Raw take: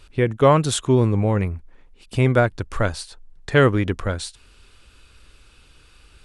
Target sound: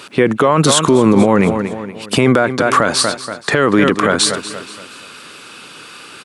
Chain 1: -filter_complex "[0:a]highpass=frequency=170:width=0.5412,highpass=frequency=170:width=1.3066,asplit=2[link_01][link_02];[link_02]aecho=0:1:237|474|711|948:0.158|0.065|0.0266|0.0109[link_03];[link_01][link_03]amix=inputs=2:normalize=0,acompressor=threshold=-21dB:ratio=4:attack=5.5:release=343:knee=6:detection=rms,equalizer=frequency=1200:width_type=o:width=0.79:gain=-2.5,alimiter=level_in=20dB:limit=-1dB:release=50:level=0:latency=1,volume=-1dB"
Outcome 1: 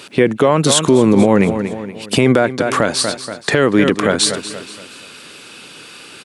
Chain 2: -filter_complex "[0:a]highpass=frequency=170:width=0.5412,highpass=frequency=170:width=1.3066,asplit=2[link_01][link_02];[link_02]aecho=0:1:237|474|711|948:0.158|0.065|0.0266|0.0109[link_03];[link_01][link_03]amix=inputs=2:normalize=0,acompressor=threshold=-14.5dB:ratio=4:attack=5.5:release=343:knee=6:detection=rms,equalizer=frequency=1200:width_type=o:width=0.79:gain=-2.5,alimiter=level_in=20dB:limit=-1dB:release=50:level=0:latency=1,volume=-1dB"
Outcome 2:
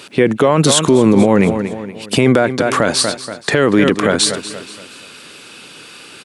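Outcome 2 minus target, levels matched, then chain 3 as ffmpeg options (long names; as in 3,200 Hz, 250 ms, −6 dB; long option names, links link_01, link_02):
1,000 Hz band −3.5 dB
-filter_complex "[0:a]highpass=frequency=170:width=0.5412,highpass=frequency=170:width=1.3066,asplit=2[link_01][link_02];[link_02]aecho=0:1:237|474|711|948:0.158|0.065|0.0266|0.0109[link_03];[link_01][link_03]amix=inputs=2:normalize=0,acompressor=threshold=-14.5dB:ratio=4:attack=5.5:release=343:knee=6:detection=rms,equalizer=frequency=1200:width_type=o:width=0.79:gain=4,alimiter=level_in=20dB:limit=-1dB:release=50:level=0:latency=1,volume=-1dB"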